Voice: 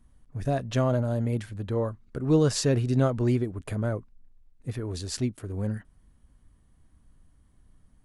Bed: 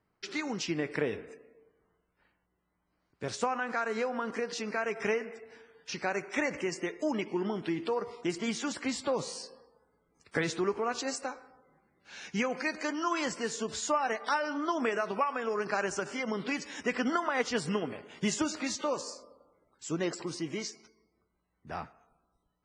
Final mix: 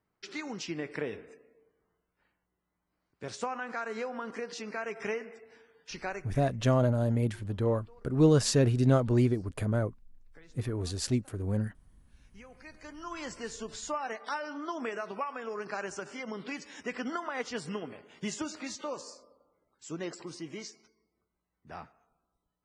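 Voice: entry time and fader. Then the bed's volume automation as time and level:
5.90 s, −0.5 dB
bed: 0:06.11 −4 dB
0:06.56 −26.5 dB
0:12.16 −26.5 dB
0:13.35 −5.5 dB

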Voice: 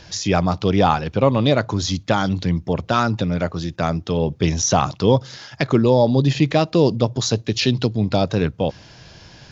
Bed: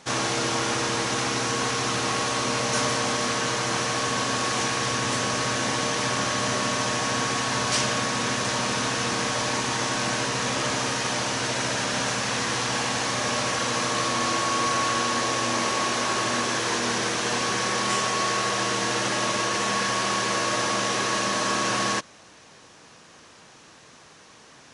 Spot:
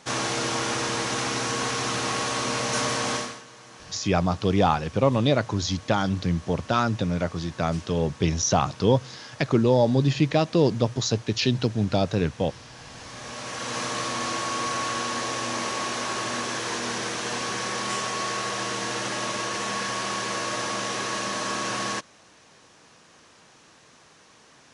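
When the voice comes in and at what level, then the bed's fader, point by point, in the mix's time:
3.80 s, −4.5 dB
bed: 0:03.17 −1.5 dB
0:03.45 −21.5 dB
0:12.73 −21.5 dB
0:13.78 −4 dB

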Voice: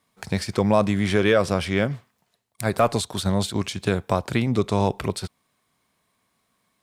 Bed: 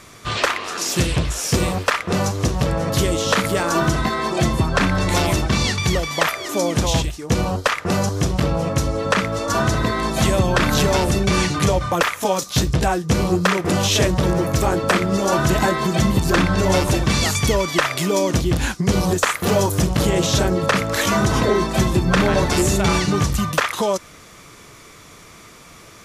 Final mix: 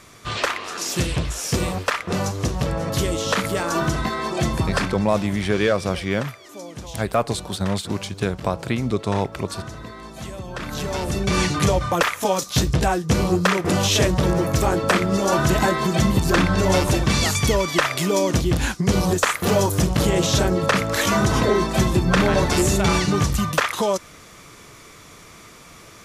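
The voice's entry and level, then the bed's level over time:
4.35 s, −1.0 dB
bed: 0:04.76 −3.5 dB
0:05.09 −16.5 dB
0:10.42 −16.5 dB
0:11.43 −1 dB

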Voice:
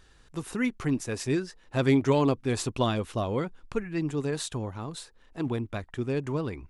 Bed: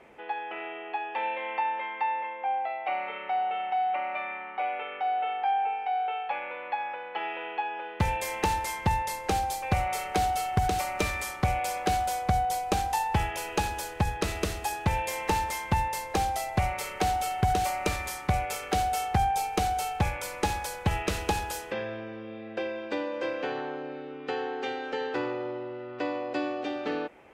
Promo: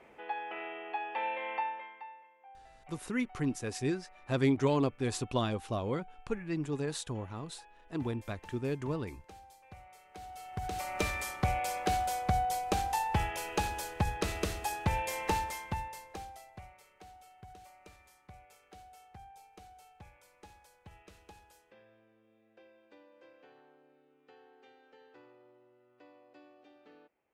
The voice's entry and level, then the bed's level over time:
2.55 s, −5.0 dB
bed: 0:01.57 −4 dB
0:02.28 −26 dB
0:10.03 −26 dB
0:10.99 −4 dB
0:15.32 −4 dB
0:16.87 −27.5 dB

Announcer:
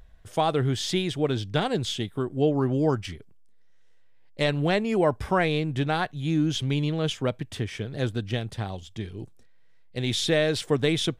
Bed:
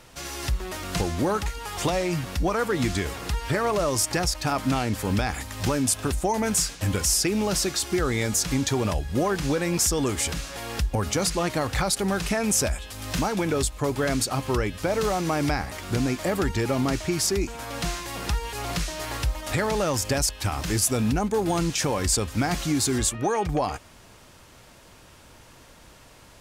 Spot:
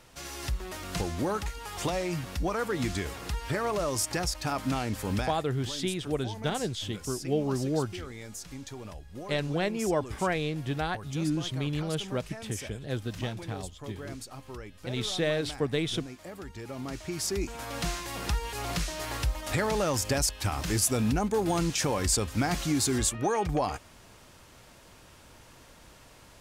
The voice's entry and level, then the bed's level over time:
4.90 s, −5.5 dB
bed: 0:05.22 −5.5 dB
0:05.43 −17.5 dB
0:16.50 −17.5 dB
0:17.58 −3 dB

